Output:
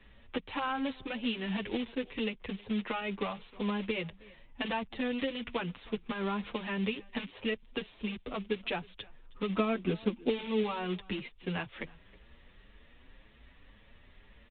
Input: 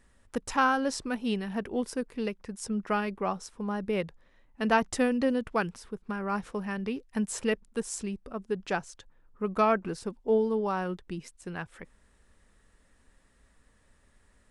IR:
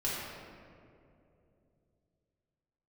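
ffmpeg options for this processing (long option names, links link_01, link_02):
-filter_complex "[0:a]acrossover=split=140[link_01][link_02];[link_02]acrusher=bits=3:mode=log:mix=0:aa=0.000001[link_03];[link_01][link_03]amix=inputs=2:normalize=0,acrossover=split=150|1200[link_04][link_05][link_06];[link_04]acompressor=threshold=-51dB:ratio=4[link_07];[link_05]acompressor=threshold=-36dB:ratio=4[link_08];[link_06]acompressor=threshold=-41dB:ratio=4[link_09];[link_07][link_08][link_09]amix=inputs=3:normalize=0,aexciter=amount=5.5:drive=3.1:freq=2200,acompressor=threshold=-33dB:ratio=2,asettb=1/sr,asplit=3[link_10][link_11][link_12];[link_10]atrim=end=9.494[link_13];[link_11]atrim=start=9.49:end=10.63,asetpts=PTS-STARTPTS,afade=type=in:duration=0.004:curve=qsin,afade=type=out:start_time=1.136:duration=0.004:curve=qsin,equalizer=frequency=270:width_type=o:width=1.5:gain=7.5[link_14];[link_12]atrim=start=10.626[link_15];[link_13][link_14]acrossfade=duration=0.004:curve1=hsin:curve2=qsin[link_16];[link_16][link_15]acrossfade=duration=0.004:curve1=qsin:curve2=hsin,aresample=8000,aresample=44100,highshelf=frequency=3100:gain=-11.5,asplit=2[link_17][link_18];[link_18]aecho=0:1:316:0.0708[link_19];[link_17][link_19]amix=inputs=2:normalize=0,asplit=2[link_20][link_21];[link_21]adelay=7.4,afreqshift=1.9[link_22];[link_20][link_22]amix=inputs=2:normalize=1,volume=8.5dB"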